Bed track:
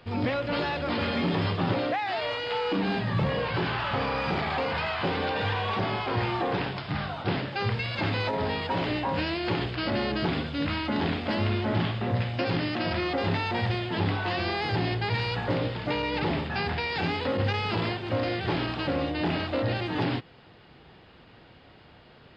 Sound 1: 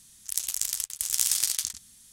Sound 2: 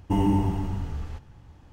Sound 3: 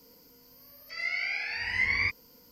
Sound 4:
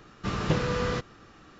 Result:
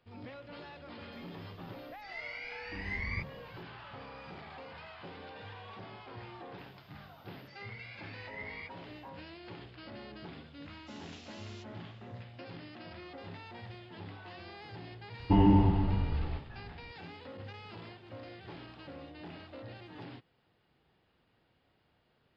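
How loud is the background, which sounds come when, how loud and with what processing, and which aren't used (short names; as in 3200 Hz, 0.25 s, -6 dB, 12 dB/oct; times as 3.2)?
bed track -19.5 dB
1.12 add 3 -8.5 dB + tilt -3 dB/oct
6.58 add 3 -17 dB + treble ducked by the level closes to 2900 Hz, closed at -29 dBFS
10.63 add 4 -14 dB + steep high-pass 2600 Hz
15.2 add 2 -0.5 dB + brick-wall FIR low-pass 5000 Hz
not used: 1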